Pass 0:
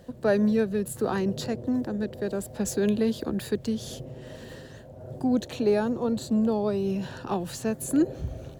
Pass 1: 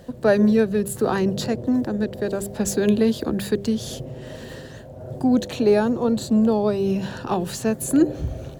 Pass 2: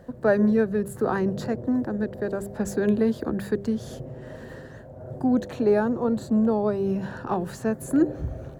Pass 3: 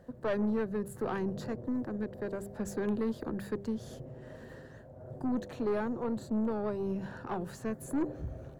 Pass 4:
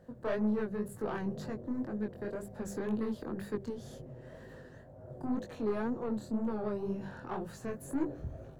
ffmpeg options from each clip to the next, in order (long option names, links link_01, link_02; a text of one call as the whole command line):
ffmpeg -i in.wav -af "bandreject=frequency=99.74:width_type=h:width=4,bandreject=frequency=199.48:width_type=h:width=4,bandreject=frequency=299.22:width_type=h:width=4,bandreject=frequency=398.96:width_type=h:width=4,bandreject=frequency=498.7:width_type=h:width=4,volume=6dB" out.wav
ffmpeg -i in.wav -af "highshelf=frequency=2200:width_type=q:width=1.5:gain=-8,volume=-3.5dB" out.wav
ffmpeg -i in.wav -af "aeval=exprs='(tanh(8.91*val(0)+0.35)-tanh(0.35))/8.91':channel_layout=same,volume=-7dB" out.wav
ffmpeg -i in.wav -af "flanger=delay=18.5:depth=6.7:speed=2,volume=1dB" out.wav